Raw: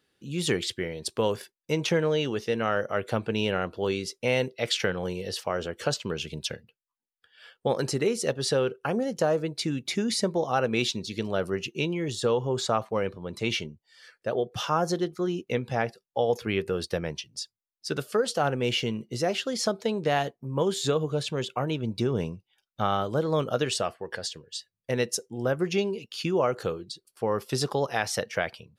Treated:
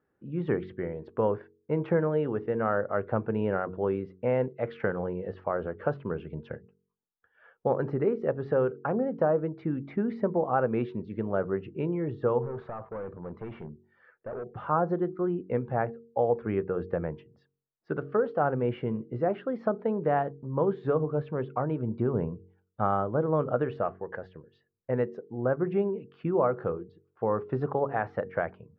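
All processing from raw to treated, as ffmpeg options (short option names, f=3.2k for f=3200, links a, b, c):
-filter_complex "[0:a]asettb=1/sr,asplit=3[a][b][c];[a]atrim=end=12.424[d];[b]atrim=start=12.42:end=14.67,asetpts=PTS-STARTPTS,afade=t=in:d=0.004:c=qsin,afade=t=out:st=2.246:d=0.004:c=qsin,acompressor=threshold=-29dB:ratio=2.5:attack=3.2:release=140:knee=1:detection=peak,asoftclip=type=hard:threshold=-33dB[e];[c]atrim=start=14.666[f];[d][e]acrossfade=d=0.004:c1=hsin:c2=qsin[g];[g][f]acrossfade=d=0.004:c1=qsin:c2=hsin,lowpass=f=1.5k:w=0.5412,lowpass=f=1.5k:w=1.3066,bandreject=f=46.3:t=h:w=4,bandreject=f=92.6:t=h:w=4,bandreject=f=138.9:t=h:w=4,bandreject=f=185.2:t=h:w=4,bandreject=f=231.5:t=h:w=4,bandreject=f=277.8:t=h:w=4,bandreject=f=324.1:t=h:w=4,bandreject=f=370.4:t=h:w=4,bandreject=f=416.7:t=h:w=4,bandreject=f=463:t=h:w=4"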